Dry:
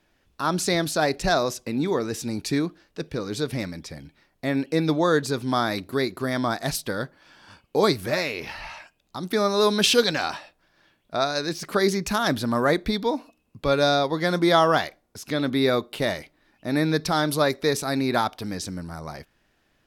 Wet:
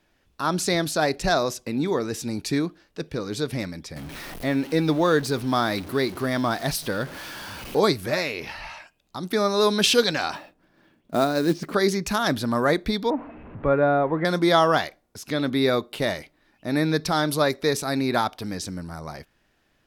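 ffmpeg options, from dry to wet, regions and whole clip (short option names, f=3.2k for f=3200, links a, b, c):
-filter_complex "[0:a]asettb=1/sr,asplit=3[a][b][c];[a]atrim=end=3.964[d];[b]atrim=start=3.96:end=7.8,asetpts=PTS-STARTPTS,afade=t=in:d=0.004:c=qsin,afade=t=out:st=3.836:d=0.004:c=qsin,aeval=exprs='val(0)+0.5*0.0178*sgn(val(0))':c=same,equalizer=f=7.3k:t=o:w=0.31:g=-5,acompressor=mode=upward:threshold=-34dB:ratio=2.5:attack=3.2:release=140:knee=2.83:detection=peak[e];[c]atrim=start=7.796[f];[d][e]acrossfade=d=0.004:c1=hsin:c2=qsin[g];[g][f]acrossfade=d=0.004:c1=qsin:c2=hsin,asettb=1/sr,asplit=3[h][i][j];[h]atrim=end=10.354[k];[i]atrim=start=10.35:end=11.74,asetpts=PTS-STARTPTS,afade=t=in:d=0.004:c=qsin,afade=t=out:st=1.386:d=0.004:c=qsin,lowpass=f=2.5k:p=1,equalizer=f=250:w=0.86:g=11,acrusher=bits=5:mode=log:mix=0:aa=0.000001[l];[j]atrim=start=11.736[m];[k][l]acrossfade=d=0.004:c1=hsin:c2=qsin[n];[n][m]acrossfade=d=0.004:c1=qsin:c2=hsin,asettb=1/sr,asplit=3[o][p][q];[o]atrim=end=13.104[r];[p]atrim=start=13.1:end=14.25,asetpts=PTS-STARTPTS,afade=t=in:d=0.004:c=qsin,afade=t=out:st=1.146:d=0.004:c=qsin,aeval=exprs='val(0)+0.5*0.0158*sgn(val(0))':c=same,lowpass=f=2.1k:w=0.5412,lowpass=f=2.1k:w=1.3066,aemphasis=mode=reproduction:type=75fm[s];[q]atrim=start=14.246[t];[r][s]acrossfade=d=0.004:c1=hsin:c2=qsin[u];[u][t]acrossfade=d=0.004:c1=qsin:c2=hsin"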